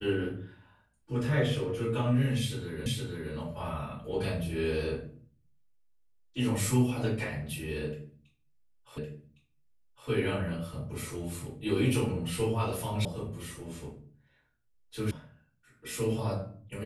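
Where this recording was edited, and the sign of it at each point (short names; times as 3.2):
2.86 repeat of the last 0.47 s
8.98 repeat of the last 1.11 s
13.05 sound cut off
15.11 sound cut off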